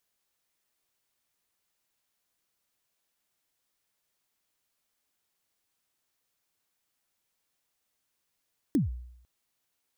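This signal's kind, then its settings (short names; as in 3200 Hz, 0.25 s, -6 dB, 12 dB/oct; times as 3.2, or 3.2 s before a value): kick drum length 0.50 s, from 330 Hz, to 61 Hz, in 0.145 s, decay 0.75 s, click on, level -19 dB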